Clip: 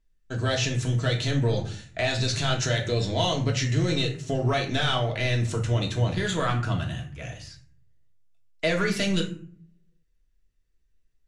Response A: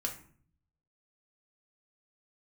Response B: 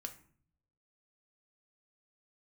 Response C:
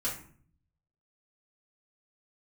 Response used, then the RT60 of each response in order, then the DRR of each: A; 0.50, 0.50, 0.50 seconds; 0.0, 4.5, −9.0 decibels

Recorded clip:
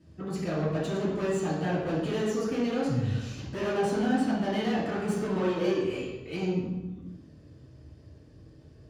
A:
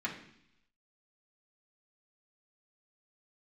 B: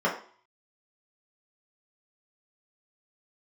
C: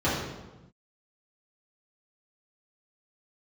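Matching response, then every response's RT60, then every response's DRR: C; 0.70, 0.50, 1.0 seconds; −5.5, −6.0, −11.0 decibels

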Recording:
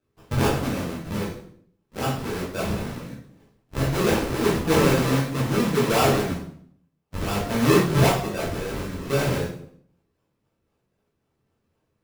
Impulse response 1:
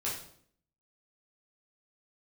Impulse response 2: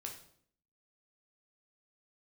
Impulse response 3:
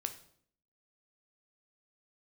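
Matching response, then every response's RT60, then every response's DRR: 1; 0.60, 0.60, 0.60 seconds; −7.0, 1.0, 7.0 decibels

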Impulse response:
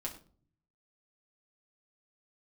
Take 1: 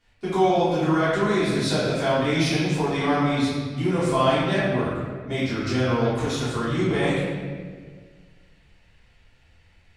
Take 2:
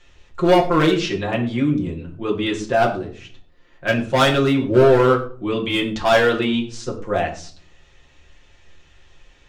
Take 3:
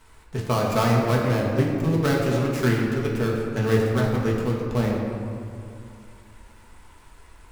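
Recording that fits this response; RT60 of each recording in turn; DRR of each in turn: 2; 1.7, 0.45, 2.4 seconds; −12.5, −2.0, −3.5 decibels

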